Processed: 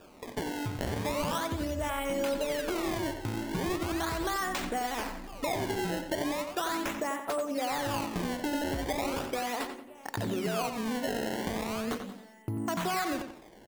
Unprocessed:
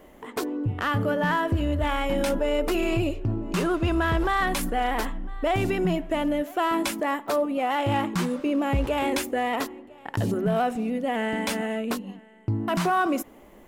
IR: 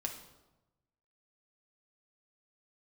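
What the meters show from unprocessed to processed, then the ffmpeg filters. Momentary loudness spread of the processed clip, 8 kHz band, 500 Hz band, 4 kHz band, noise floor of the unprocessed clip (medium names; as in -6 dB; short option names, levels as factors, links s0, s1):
5 LU, -1.5 dB, -6.5 dB, -3.0 dB, -50 dBFS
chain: -filter_complex "[0:a]lowshelf=f=160:g=-9,acrusher=samples=21:mix=1:aa=0.000001:lfo=1:lforange=33.6:lforate=0.38,acompressor=threshold=0.0447:ratio=6,asplit=2[s0][s1];[s1]adelay=90,lowpass=f=4700:p=1,volume=0.422,asplit=2[s2][s3];[s3]adelay=90,lowpass=f=4700:p=1,volume=0.34,asplit=2[s4][s5];[s5]adelay=90,lowpass=f=4700:p=1,volume=0.34,asplit=2[s6][s7];[s7]adelay=90,lowpass=f=4700:p=1,volume=0.34[s8];[s0][s2][s4][s6][s8]amix=inputs=5:normalize=0,volume=0.794"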